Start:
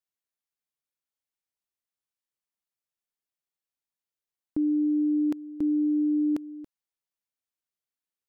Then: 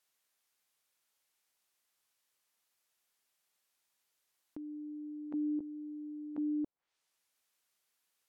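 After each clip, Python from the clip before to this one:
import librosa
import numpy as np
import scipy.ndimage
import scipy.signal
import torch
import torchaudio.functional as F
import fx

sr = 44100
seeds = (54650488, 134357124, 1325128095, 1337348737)

y = fx.over_compress(x, sr, threshold_db=-37.0, ratio=-1.0)
y = fx.env_lowpass_down(y, sr, base_hz=540.0, full_db=-34.0)
y = fx.low_shelf(y, sr, hz=350.0, db=-11.5)
y = y * 10.0 ** (3.5 / 20.0)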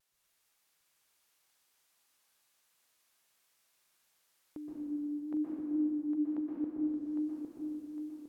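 y = fx.vibrato(x, sr, rate_hz=0.97, depth_cents=36.0)
y = fx.echo_feedback(y, sr, ms=807, feedback_pct=41, wet_db=-5.5)
y = fx.rev_plate(y, sr, seeds[0], rt60_s=2.4, hf_ratio=0.85, predelay_ms=110, drr_db=-5.0)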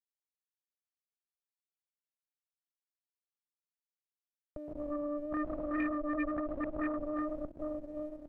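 y = fx.backlash(x, sr, play_db=-53.5)
y = fx.tilt_eq(y, sr, slope=-3.0)
y = fx.cheby_harmonics(y, sr, harmonics=(8,), levels_db=(-8,), full_scale_db=-19.5)
y = y * 10.0 ** (-8.0 / 20.0)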